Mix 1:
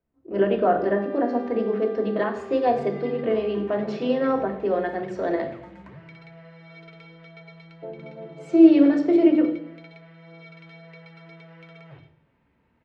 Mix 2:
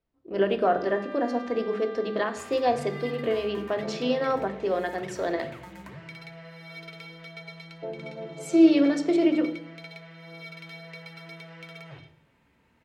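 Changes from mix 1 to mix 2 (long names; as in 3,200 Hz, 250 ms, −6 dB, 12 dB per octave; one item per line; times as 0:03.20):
speech: send −7.5 dB
first sound: add inverse Chebyshev high-pass filter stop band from 260 Hz, stop band 60 dB
master: remove head-to-tape spacing loss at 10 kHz 24 dB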